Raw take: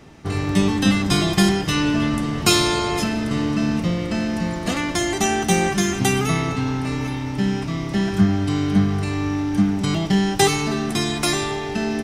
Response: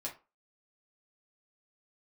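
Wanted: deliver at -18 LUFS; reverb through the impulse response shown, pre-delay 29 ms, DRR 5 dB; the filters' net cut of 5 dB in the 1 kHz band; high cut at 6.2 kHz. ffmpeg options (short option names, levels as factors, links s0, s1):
-filter_complex "[0:a]lowpass=6200,equalizer=f=1000:t=o:g=-7,asplit=2[s0][s1];[1:a]atrim=start_sample=2205,adelay=29[s2];[s1][s2]afir=irnorm=-1:irlink=0,volume=0.596[s3];[s0][s3]amix=inputs=2:normalize=0,volume=1.26"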